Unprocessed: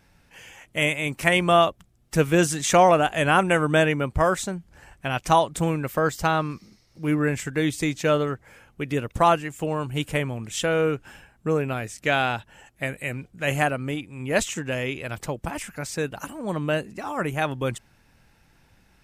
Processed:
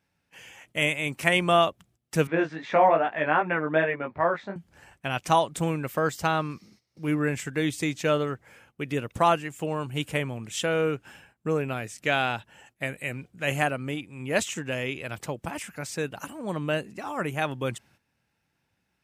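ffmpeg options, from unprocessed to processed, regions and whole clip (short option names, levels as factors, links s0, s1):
-filter_complex "[0:a]asettb=1/sr,asplit=3[s0][s1][s2];[s0]atrim=end=2.274[s3];[s1]atrim=start=2.27:end=4.56,asetpts=PTS-STARTPTS,afade=t=in:d=0.004:c=qsin,afade=t=out:st=2.286:d=0.004:c=qsin,flanger=delay=17.5:depth=2.8:speed=2.5,highpass=140,equalizer=f=140:t=q:w=4:g=-7,equalizer=f=620:t=q:w=4:g=4,equalizer=f=930:t=q:w=4:g=4,equalizer=f=1800:t=q:w=4:g=5,equalizer=f=3000:t=q:w=4:g=-10,lowpass=f=3300:w=0.5412,lowpass=f=3300:w=1.3066[s4];[s2]atrim=start=4.556[s5];[s3][s4]acrossfade=d=0.004:c1=hsin:c2=qsin[s6];[s6][s5]acrossfade=d=0.004:c1=qsin:c2=hsin,highpass=89,agate=range=0.251:threshold=0.00178:ratio=16:detection=peak,equalizer=f=2800:t=o:w=0.77:g=2,volume=0.708"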